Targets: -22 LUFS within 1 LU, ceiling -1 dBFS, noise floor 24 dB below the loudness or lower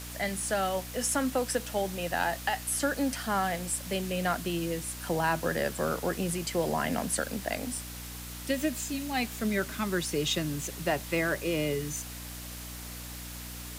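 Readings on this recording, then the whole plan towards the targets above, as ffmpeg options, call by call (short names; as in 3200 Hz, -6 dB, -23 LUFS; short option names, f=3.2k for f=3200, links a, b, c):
hum 60 Hz; harmonics up to 300 Hz; hum level -42 dBFS; noise floor -41 dBFS; noise floor target -55 dBFS; loudness -31.0 LUFS; peak -16.0 dBFS; loudness target -22.0 LUFS
-> -af "bandreject=f=60:t=h:w=4,bandreject=f=120:t=h:w=4,bandreject=f=180:t=h:w=4,bandreject=f=240:t=h:w=4,bandreject=f=300:t=h:w=4"
-af "afftdn=nr=14:nf=-41"
-af "volume=9dB"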